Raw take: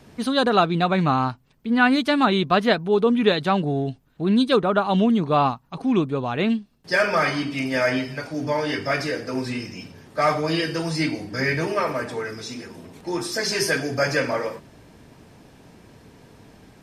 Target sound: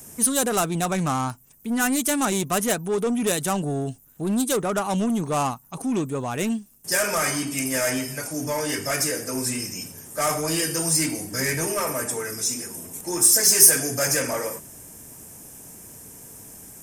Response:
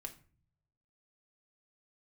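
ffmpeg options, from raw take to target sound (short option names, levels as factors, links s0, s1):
-af "apsyclip=2.82,acontrast=74,aexciter=amount=14.1:drive=7.5:freq=6400,volume=0.141"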